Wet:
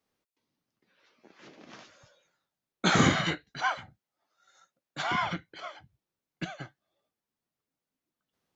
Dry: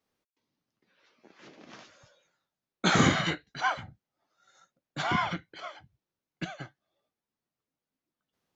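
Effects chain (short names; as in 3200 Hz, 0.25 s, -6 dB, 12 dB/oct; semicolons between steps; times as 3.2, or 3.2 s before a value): 3.64–5.22 low shelf 340 Hz -8 dB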